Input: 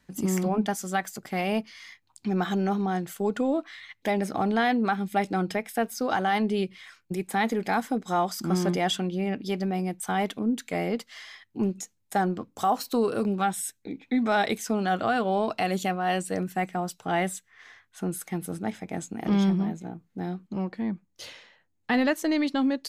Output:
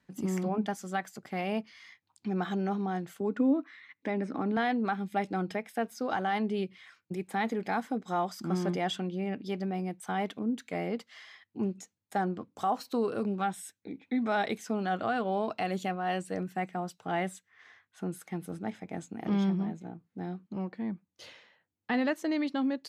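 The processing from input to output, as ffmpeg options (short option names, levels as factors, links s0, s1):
-filter_complex "[0:a]asettb=1/sr,asplit=3[s0][s1][s2];[s0]atrim=end=3.204[s3];[s1]atrim=start=3.2:end=4.57,asetpts=PTS-STARTPTS,afade=t=in:d=0.004:c=qsin,afade=t=out:st=1.366:d=0.004:c=qsin,highpass=140,equalizer=f=270:t=q:w=4:g=9,equalizer=f=720:t=q:w=4:g=-9,equalizer=f=3200:t=q:w=4:g=-8,equalizer=f=4600:t=q:w=4:g=-7,equalizer=f=6700:t=q:w=4:g=-8,lowpass=f=7300:w=0.5412,lowpass=f=7300:w=1.3066[s4];[s2]atrim=start=4.566[s5];[s3][s4]acrossfade=d=0.004:c1=hsin:c2=qsin[s6];[s6][s5]acrossfade=d=0.004:c1=qsin:c2=hsin,highpass=79,highshelf=f=6100:g=-10.5,volume=0.562"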